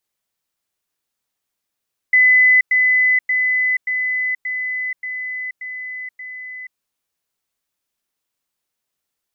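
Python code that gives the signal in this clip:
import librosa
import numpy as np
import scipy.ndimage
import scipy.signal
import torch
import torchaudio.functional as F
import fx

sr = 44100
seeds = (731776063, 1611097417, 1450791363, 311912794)

y = fx.level_ladder(sr, hz=2010.0, from_db=-8.5, step_db=-3.0, steps=8, dwell_s=0.48, gap_s=0.1)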